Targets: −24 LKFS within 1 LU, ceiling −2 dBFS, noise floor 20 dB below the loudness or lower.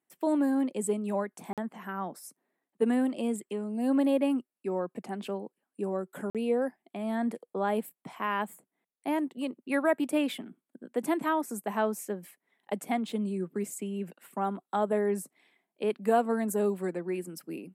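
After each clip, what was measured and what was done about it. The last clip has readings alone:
number of dropouts 2; longest dropout 47 ms; integrated loudness −31.5 LKFS; sample peak −13.5 dBFS; target loudness −24.0 LKFS
→ repair the gap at 0:01.53/0:06.30, 47 ms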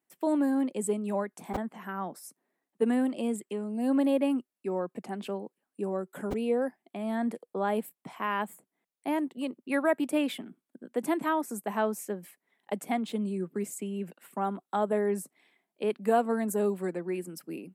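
number of dropouts 0; integrated loudness −31.5 LKFS; sample peak −13.5 dBFS; target loudness −24.0 LKFS
→ level +7.5 dB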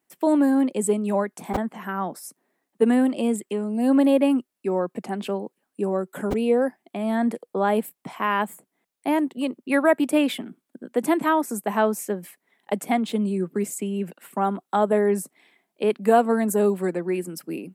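integrated loudness −24.0 LKFS; sample peak −6.0 dBFS; background noise floor −81 dBFS

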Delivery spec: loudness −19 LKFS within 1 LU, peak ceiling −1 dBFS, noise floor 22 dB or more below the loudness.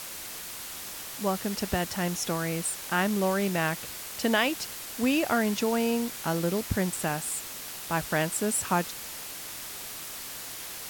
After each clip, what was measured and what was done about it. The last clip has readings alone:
background noise floor −40 dBFS; target noise floor −52 dBFS; integrated loudness −29.5 LKFS; sample peak −11.5 dBFS; target loudness −19.0 LKFS
→ broadband denoise 12 dB, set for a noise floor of −40 dBFS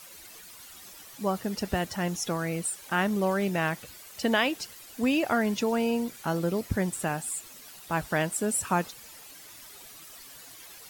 background noise floor −48 dBFS; target noise floor −51 dBFS
→ broadband denoise 6 dB, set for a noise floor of −48 dBFS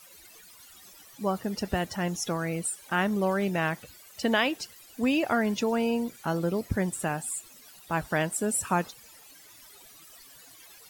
background noise floor −52 dBFS; integrated loudness −29.0 LKFS; sample peak −11.5 dBFS; target loudness −19.0 LKFS
→ level +10 dB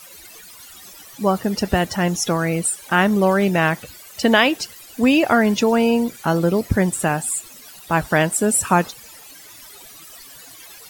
integrated loudness −19.0 LKFS; sample peak −1.5 dBFS; background noise floor −42 dBFS

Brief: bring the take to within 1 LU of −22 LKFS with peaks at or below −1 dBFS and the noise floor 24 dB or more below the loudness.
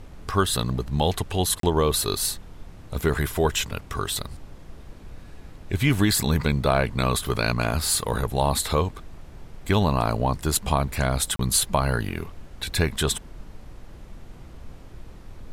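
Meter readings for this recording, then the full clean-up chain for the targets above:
number of dropouts 2; longest dropout 33 ms; background noise floor −44 dBFS; target noise floor −48 dBFS; integrated loudness −24.0 LKFS; sample peak −7.0 dBFS; target loudness −22.0 LKFS
→ repair the gap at 0:01.60/0:11.36, 33 ms
noise reduction from a noise print 6 dB
level +2 dB

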